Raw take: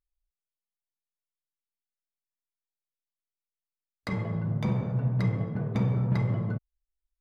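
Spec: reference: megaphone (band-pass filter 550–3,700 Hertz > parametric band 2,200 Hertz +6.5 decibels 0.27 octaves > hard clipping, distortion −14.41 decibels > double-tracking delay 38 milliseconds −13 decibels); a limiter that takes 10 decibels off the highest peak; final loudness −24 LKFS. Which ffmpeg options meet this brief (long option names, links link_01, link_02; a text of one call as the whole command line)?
ffmpeg -i in.wav -filter_complex "[0:a]alimiter=level_in=0.5dB:limit=-24dB:level=0:latency=1,volume=-0.5dB,highpass=550,lowpass=3700,equalizer=frequency=2200:width_type=o:width=0.27:gain=6.5,asoftclip=type=hard:threshold=-38dB,asplit=2[link_01][link_02];[link_02]adelay=38,volume=-13dB[link_03];[link_01][link_03]amix=inputs=2:normalize=0,volume=21.5dB" out.wav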